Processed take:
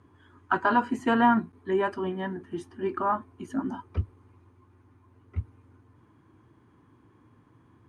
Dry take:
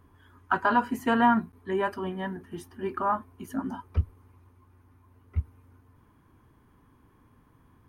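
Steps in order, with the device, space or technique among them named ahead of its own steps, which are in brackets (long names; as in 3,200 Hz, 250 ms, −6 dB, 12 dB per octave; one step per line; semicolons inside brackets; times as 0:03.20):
car door speaker (loudspeaker in its box 94–8,500 Hz, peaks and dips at 110 Hz +6 dB, 330 Hz +7 dB, 5,400 Hz −3 dB)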